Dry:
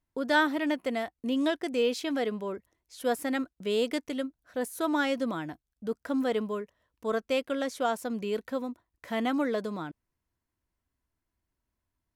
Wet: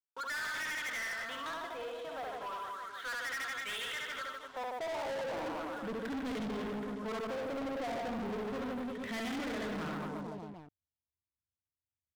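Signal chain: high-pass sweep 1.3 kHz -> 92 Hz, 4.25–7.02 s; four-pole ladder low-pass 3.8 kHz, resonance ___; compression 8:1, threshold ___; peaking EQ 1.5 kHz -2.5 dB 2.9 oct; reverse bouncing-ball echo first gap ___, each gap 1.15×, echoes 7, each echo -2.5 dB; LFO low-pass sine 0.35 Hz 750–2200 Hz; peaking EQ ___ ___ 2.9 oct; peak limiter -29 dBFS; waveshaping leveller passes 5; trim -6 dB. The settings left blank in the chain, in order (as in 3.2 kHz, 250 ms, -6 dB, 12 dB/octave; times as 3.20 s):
80%, -37 dBFS, 70 ms, 66 Hz, +7 dB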